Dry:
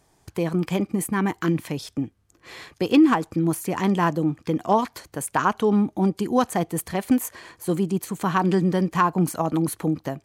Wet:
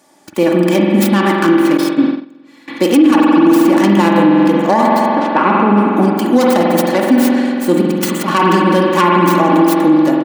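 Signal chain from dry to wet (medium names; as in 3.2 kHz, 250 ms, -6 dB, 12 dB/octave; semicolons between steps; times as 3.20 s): tracing distortion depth 0.39 ms; 5.08–5.76 s: low-pass 2.9 kHz -> 1.2 kHz 12 dB/octave; 7.81–8.28 s: compressor with a negative ratio -30 dBFS, ratio -1; spring tank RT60 2.6 s, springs 45 ms, chirp 35 ms, DRR -0.5 dB; 1.77–2.68 s: gate -26 dBFS, range -20 dB; high-pass 170 Hz 24 dB/octave; comb 3.5 ms, depth 65%; loudness maximiser +11 dB; trim -1 dB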